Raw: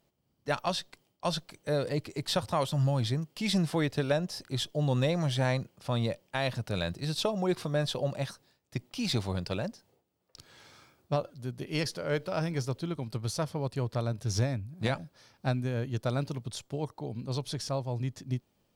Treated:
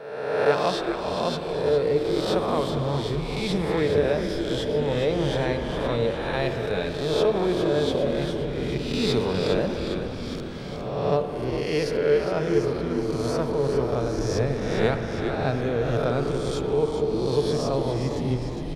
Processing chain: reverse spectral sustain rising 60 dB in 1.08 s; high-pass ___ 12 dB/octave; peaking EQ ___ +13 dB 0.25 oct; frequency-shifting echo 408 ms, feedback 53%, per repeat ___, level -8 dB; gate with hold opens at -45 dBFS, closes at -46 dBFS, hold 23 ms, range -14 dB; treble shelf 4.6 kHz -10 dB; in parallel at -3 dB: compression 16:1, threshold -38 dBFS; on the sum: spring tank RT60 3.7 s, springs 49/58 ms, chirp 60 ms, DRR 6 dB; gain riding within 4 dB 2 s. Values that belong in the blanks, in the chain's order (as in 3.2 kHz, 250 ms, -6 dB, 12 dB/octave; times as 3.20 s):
120 Hz, 440 Hz, -99 Hz